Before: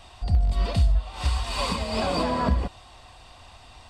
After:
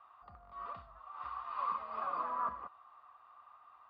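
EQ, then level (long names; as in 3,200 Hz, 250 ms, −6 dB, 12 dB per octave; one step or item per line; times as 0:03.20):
resonant band-pass 1,200 Hz, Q 14
high-frequency loss of the air 290 metres
+7.0 dB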